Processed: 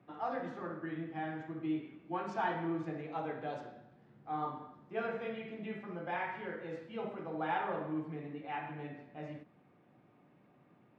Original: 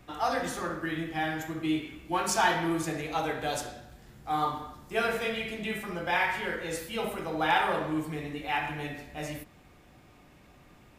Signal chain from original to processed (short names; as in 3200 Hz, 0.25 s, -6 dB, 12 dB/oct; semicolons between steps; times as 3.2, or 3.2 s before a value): HPF 130 Hz 24 dB/oct; tape spacing loss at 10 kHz 43 dB; ending taper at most 410 dB/s; gain -5 dB